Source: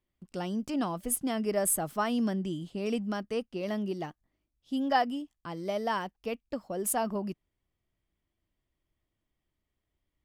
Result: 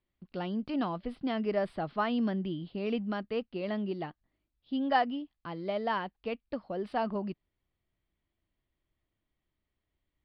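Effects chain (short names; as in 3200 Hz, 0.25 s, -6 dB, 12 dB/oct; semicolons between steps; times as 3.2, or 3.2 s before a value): elliptic low-pass 4400 Hz, stop band 40 dB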